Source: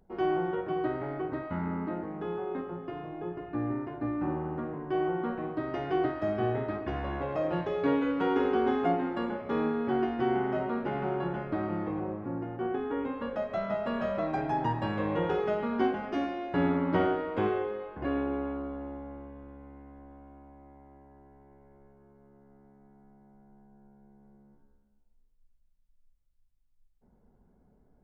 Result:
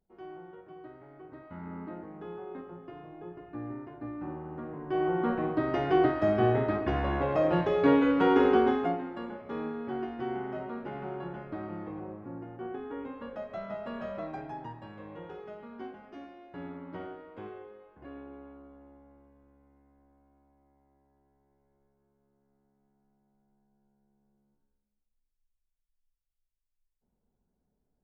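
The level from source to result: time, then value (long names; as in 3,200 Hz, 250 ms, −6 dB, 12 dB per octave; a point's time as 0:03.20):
0:01.10 −17 dB
0:01.78 −7 dB
0:04.45 −7 dB
0:05.31 +4.5 dB
0:08.56 +4.5 dB
0:09.05 −6.5 dB
0:14.23 −6.5 dB
0:14.85 −15 dB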